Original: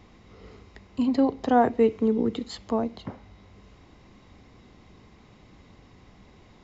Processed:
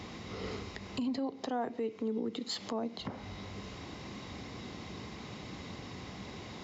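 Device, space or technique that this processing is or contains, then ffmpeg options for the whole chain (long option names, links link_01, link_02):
broadcast voice chain: -filter_complex "[0:a]asettb=1/sr,asplit=3[link_01][link_02][link_03];[link_01]atrim=end=1.174[link_04];[link_02]atrim=start=1.17:end=2.99,asetpts=PTS-STARTPTS,afade=type=in:duration=0.004:curve=qsin,afade=type=out:start_time=1.816:duration=0.004:curve=qsin,highpass=160[link_05];[link_03]atrim=start=2.986[link_06];[link_04][link_05]acrossfade=duration=0.004:curve1=hsin:curve2=qsin[link_07];[link_07][link_06]acrossfade=duration=0.004:curve1=qsin:curve2=hsin,highpass=89,deesser=0.95,acompressor=threshold=-40dB:ratio=4,equalizer=frequency=4700:width_type=o:width=1.5:gain=5,alimiter=level_in=11.5dB:limit=-24dB:level=0:latency=1:release=111,volume=-11.5dB,volume=9dB"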